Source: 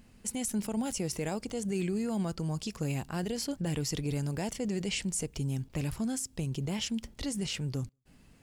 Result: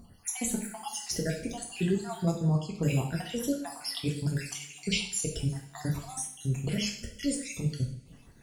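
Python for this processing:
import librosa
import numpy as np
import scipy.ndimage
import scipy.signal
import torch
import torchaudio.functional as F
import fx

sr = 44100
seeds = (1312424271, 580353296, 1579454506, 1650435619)

y = fx.spec_dropout(x, sr, seeds[0], share_pct=63)
y = fx.lowpass(y, sr, hz=fx.line((2.35, 3600.0), (2.81, 1400.0)), slope=6, at=(2.35, 2.81), fade=0.02)
y = fx.rev_double_slope(y, sr, seeds[1], early_s=0.56, late_s=2.6, knee_db=-26, drr_db=-1.0)
y = y * librosa.db_to_amplitude(4.0)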